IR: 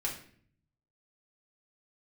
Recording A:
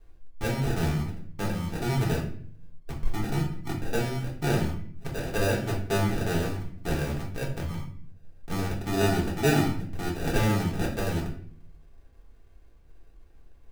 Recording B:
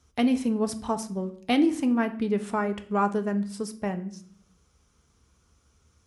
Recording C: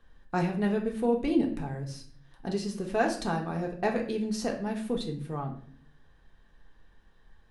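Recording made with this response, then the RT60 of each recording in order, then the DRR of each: A; 0.55, 0.55, 0.55 s; -4.0, 7.5, 0.5 dB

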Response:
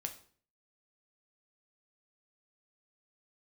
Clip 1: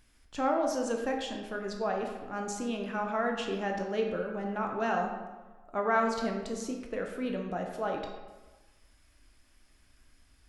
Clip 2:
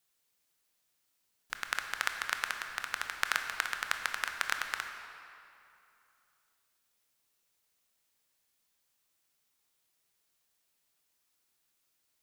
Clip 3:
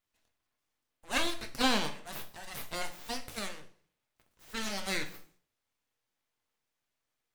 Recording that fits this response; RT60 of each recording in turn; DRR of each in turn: 3; 1.3, 2.8, 0.50 s; 1.5, 5.0, 4.5 dB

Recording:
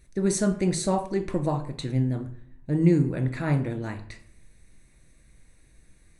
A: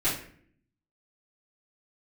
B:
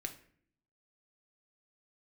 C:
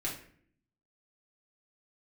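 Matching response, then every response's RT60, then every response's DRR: B; 0.55, 0.55, 0.55 s; -12.5, 5.0, -5.0 dB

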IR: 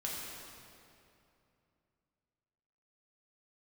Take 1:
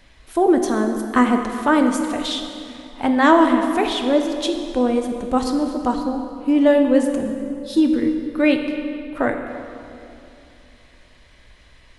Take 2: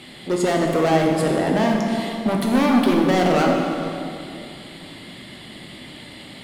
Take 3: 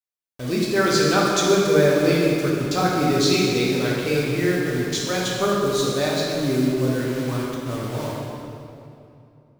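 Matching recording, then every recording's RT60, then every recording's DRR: 3; 2.7, 2.7, 2.7 s; 4.0, -0.5, -5.0 dB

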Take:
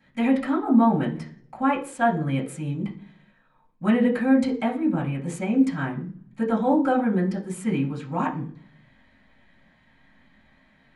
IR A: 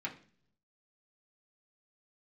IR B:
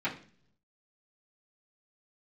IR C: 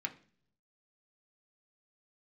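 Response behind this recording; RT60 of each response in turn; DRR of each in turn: B; not exponential, 0.50 s, not exponential; -3.5, -11.0, 3.0 dB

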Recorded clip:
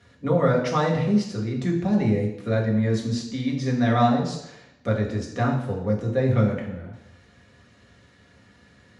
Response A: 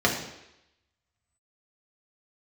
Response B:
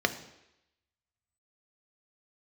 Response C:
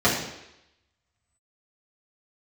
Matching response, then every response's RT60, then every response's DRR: A; 0.85, 0.85, 0.85 s; -2.0, 7.5, -8.5 dB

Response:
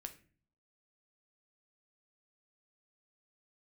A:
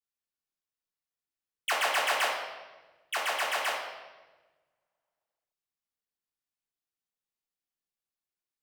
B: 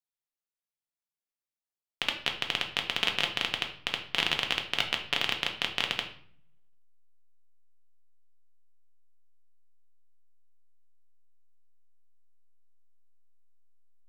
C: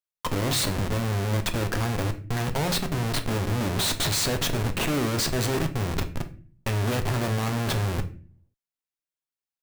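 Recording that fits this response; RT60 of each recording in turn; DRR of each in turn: C; 1.2, 0.55, 0.40 s; -4.0, 3.0, 6.0 dB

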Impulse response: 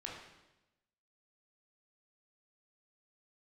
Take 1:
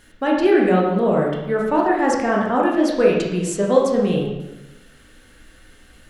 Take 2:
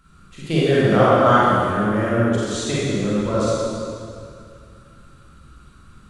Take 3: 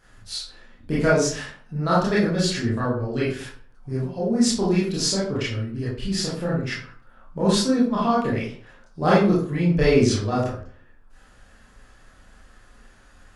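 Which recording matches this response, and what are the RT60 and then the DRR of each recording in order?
1; 1.0, 2.3, 0.50 s; -3.0, -9.5, -9.0 dB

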